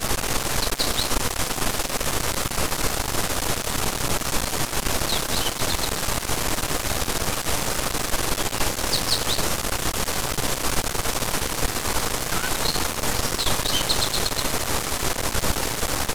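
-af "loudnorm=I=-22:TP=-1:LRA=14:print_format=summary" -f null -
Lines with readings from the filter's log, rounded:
Input Integrated:    -23.6 LUFS
Input True Peak:      -5.3 dBTP
Input LRA:             1.1 LU
Input Threshold:     -33.6 LUFS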